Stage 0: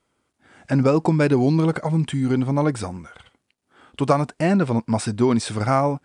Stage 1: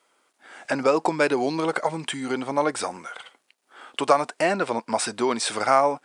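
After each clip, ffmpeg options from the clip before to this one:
-filter_complex "[0:a]asplit=2[s0][s1];[s1]acompressor=threshold=0.0447:ratio=6,volume=1.41[s2];[s0][s2]amix=inputs=2:normalize=0,highpass=520"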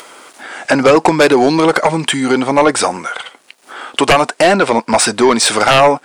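-af "aeval=exprs='0.631*sin(PI/2*3.16*val(0)/0.631)':c=same,acompressor=mode=upward:threshold=0.0501:ratio=2.5,volume=1.12"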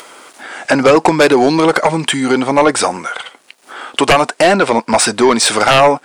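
-af anull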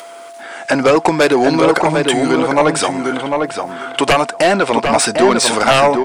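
-filter_complex "[0:a]aeval=exprs='val(0)+0.0316*sin(2*PI*680*n/s)':c=same,asplit=2[s0][s1];[s1]adelay=750,lowpass=f=2400:p=1,volume=0.631,asplit=2[s2][s3];[s3]adelay=750,lowpass=f=2400:p=1,volume=0.17,asplit=2[s4][s5];[s5]adelay=750,lowpass=f=2400:p=1,volume=0.17[s6];[s2][s4][s6]amix=inputs=3:normalize=0[s7];[s0][s7]amix=inputs=2:normalize=0,volume=0.75"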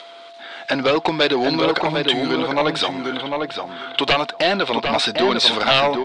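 -af "lowpass=f=3800:t=q:w=4.7,volume=0.447"

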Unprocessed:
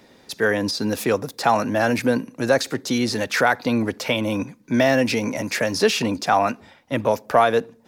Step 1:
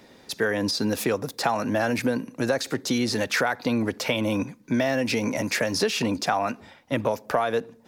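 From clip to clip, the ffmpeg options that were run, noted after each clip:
-af "acompressor=threshold=0.1:ratio=6"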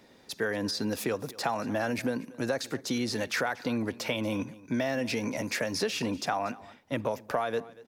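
-af "aecho=1:1:236:0.1,volume=0.501"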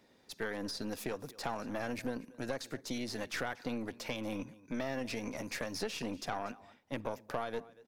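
-af "aeval=exprs='(tanh(12.6*val(0)+0.75)-tanh(0.75))/12.6':c=same,volume=0.631"

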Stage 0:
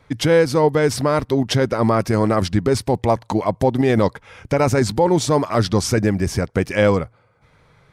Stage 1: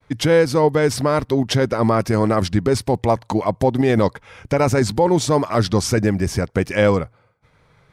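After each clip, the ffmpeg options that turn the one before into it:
-af "agate=range=0.0224:threshold=0.00282:ratio=3:detection=peak"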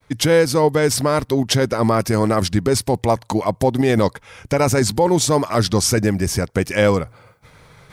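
-af "areverse,acompressor=mode=upward:threshold=0.0141:ratio=2.5,areverse,highshelf=f=5500:g=10.5"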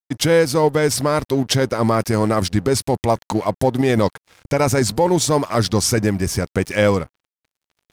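-af "aeval=exprs='sgn(val(0))*max(abs(val(0))-0.0119,0)':c=same"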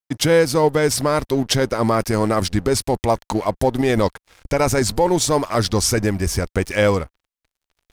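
-af "asubboost=boost=6.5:cutoff=51"

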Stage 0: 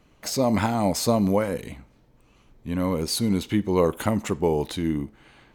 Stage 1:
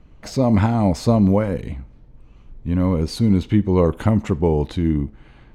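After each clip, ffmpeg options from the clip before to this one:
-af "aemphasis=mode=reproduction:type=bsi,volume=1.12"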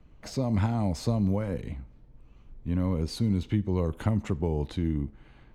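-filter_complex "[0:a]acrossover=split=150|3000[s0][s1][s2];[s1]acompressor=threshold=0.1:ratio=6[s3];[s0][s3][s2]amix=inputs=3:normalize=0,volume=0.447"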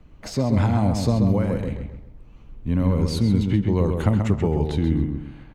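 -filter_complex "[0:a]asplit=2[s0][s1];[s1]adelay=132,lowpass=f=3200:p=1,volume=0.562,asplit=2[s2][s3];[s3]adelay=132,lowpass=f=3200:p=1,volume=0.36,asplit=2[s4][s5];[s5]adelay=132,lowpass=f=3200:p=1,volume=0.36,asplit=2[s6][s7];[s7]adelay=132,lowpass=f=3200:p=1,volume=0.36[s8];[s0][s2][s4][s6][s8]amix=inputs=5:normalize=0,volume=2"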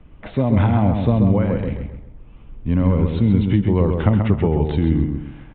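-af "aresample=8000,aresample=44100,volume=1.5"

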